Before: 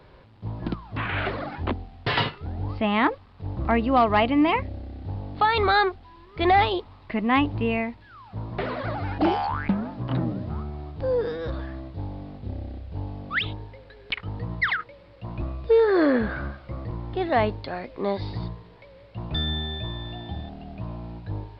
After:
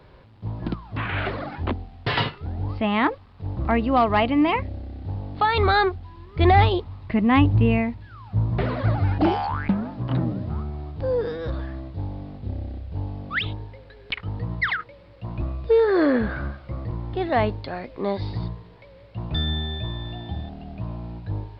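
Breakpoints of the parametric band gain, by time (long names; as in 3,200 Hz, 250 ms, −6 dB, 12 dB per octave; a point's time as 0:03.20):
parametric band 85 Hz 2.5 octaves
0:05.43 +2.5 dB
0:05.85 +13.5 dB
0:08.87 +13.5 dB
0:09.51 +3.5 dB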